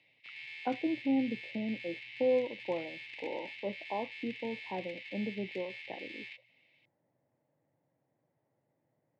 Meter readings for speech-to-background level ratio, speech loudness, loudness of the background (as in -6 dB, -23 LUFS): 8.5 dB, -36.5 LUFS, -45.0 LUFS